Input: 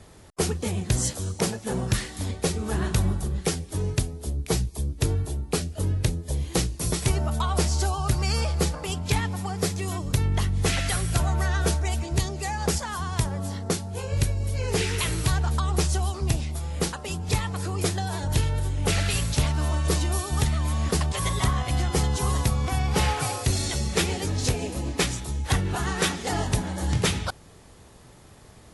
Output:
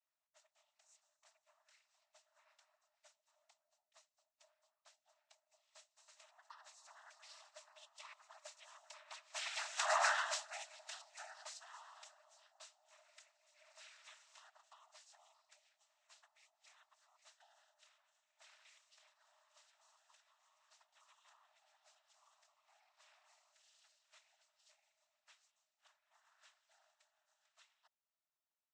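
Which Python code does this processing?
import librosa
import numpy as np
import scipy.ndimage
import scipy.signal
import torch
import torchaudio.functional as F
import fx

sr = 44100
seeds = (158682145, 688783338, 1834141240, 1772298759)

y = fx.doppler_pass(x, sr, speed_mps=42, closest_m=2.8, pass_at_s=9.97)
y = fx.peak_eq(y, sr, hz=780.0, db=-10.5, octaves=0.21)
y = fx.noise_vocoder(y, sr, seeds[0], bands=12)
y = fx.brickwall_highpass(y, sr, low_hz=590.0)
y = F.gain(torch.from_numpy(y), 5.5).numpy()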